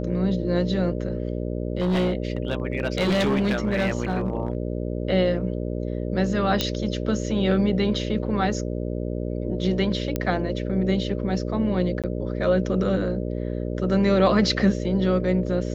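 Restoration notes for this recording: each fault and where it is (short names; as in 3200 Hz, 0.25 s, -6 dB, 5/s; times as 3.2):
buzz 60 Hz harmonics 10 -28 dBFS
1.8–4.57 clipped -18 dBFS
6.61 pop -7 dBFS
10.16 pop -11 dBFS
12.02–12.04 gap 17 ms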